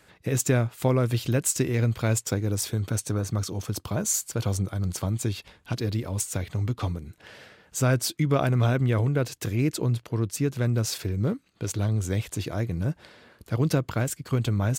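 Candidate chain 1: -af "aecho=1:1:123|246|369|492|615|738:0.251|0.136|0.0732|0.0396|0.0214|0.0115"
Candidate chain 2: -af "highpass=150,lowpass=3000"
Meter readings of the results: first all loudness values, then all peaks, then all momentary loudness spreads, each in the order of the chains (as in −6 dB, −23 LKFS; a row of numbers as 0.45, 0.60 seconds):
−26.5, −30.0 LKFS; −10.0, −9.5 dBFS; 8, 10 LU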